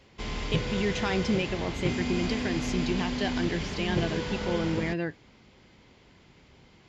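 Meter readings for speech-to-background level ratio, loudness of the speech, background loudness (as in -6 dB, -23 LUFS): 0.5 dB, -31.5 LUFS, -32.0 LUFS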